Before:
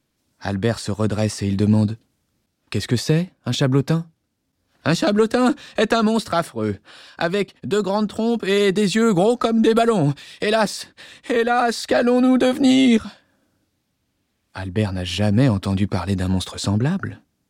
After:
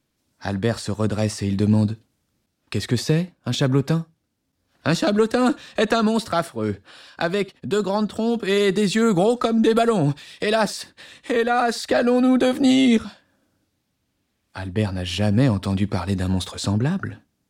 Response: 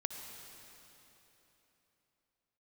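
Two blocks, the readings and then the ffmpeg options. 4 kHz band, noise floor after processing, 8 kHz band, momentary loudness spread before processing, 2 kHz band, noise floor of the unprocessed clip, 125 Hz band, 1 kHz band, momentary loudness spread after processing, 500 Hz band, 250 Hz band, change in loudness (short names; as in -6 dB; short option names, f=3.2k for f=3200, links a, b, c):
-1.5 dB, -73 dBFS, -1.5 dB, 11 LU, -1.5 dB, -72 dBFS, -1.5 dB, -1.5 dB, 11 LU, -1.5 dB, -1.5 dB, -1.5 dB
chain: -filter_complex "[0:a]asplit=2[a][b];[1:a]atrim=start_sample=2205,atrim=end_sample=3528[c];[b][c]afir=irnorm=-1:irlink=0,volume=-3.5dB[d];[a][d]amix=inputs=2:normalize=0,volume=-5.5dB"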